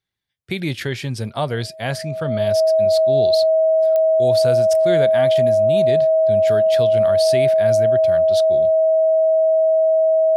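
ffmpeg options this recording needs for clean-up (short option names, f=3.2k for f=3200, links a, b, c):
-af "adeclick=t=4,bandreject=f=640:w=30"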